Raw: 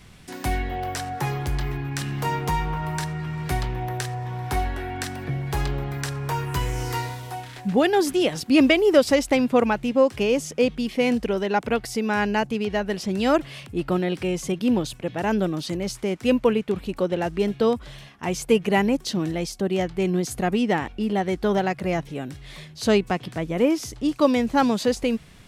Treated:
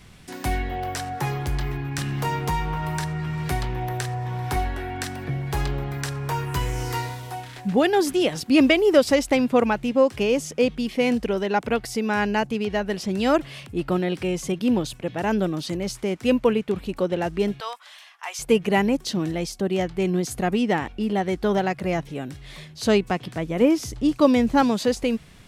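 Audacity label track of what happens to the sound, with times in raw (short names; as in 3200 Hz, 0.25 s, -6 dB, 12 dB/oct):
1.980000	4.560000	three-band squash depth 40%
17.600000	18.390000	HPF 840 Hz 24 dB/oct
23.610000	24.620000	low shelf 260 Hz +6 dB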